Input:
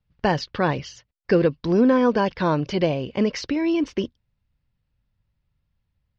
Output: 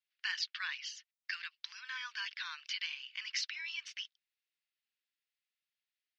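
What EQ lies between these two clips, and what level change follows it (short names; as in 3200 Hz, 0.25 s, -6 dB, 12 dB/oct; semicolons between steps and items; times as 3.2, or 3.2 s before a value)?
Bessel high-pass 2800 Hz, order 8; high shelf 5400 Hz -9.5 dB; +2.0 dB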